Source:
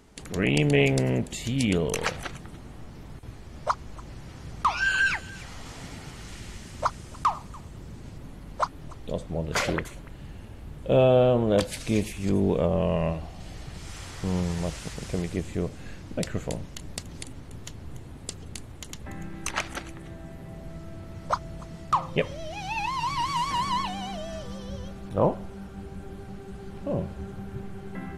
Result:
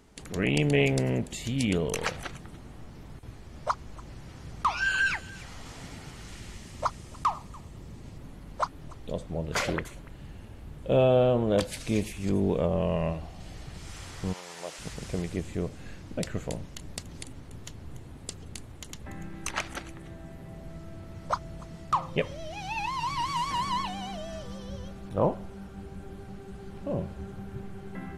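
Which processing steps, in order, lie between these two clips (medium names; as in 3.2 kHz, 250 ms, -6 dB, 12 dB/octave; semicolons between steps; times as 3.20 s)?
6.54–8.17 s: band-stop 1.5 kHz, Q 12; 14.32–14.78 s: high-pass 1 kHz -> 380 Hz 12 dB/octave; trim -2.5 dB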